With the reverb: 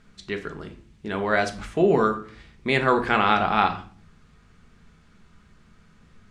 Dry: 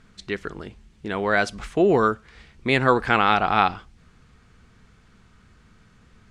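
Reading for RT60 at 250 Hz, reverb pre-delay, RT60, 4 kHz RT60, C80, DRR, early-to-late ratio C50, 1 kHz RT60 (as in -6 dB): 0.75 s, 5 ms, 0.45 s, 0.35 s, 16.5 dB, 5.0 dB, 12.5 dB, 0.45 s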